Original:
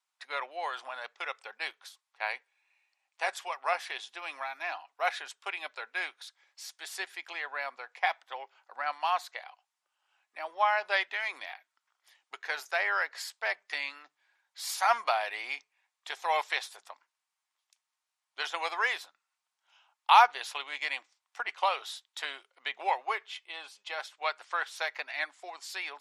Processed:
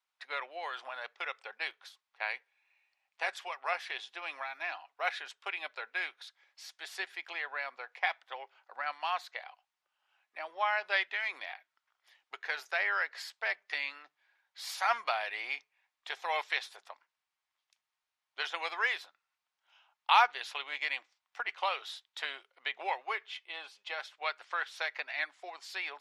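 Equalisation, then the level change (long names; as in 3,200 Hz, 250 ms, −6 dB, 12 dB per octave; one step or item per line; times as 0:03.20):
octave-band graphic EQ 250/1,000/8,000 Hz −5/−3/−5 dB
dynamic equaliser 690 Hz, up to −5 dB, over −42 dBFS, Q 0.85
high-shelf EQ 6,800 Hz −10 dB
+1.5 dB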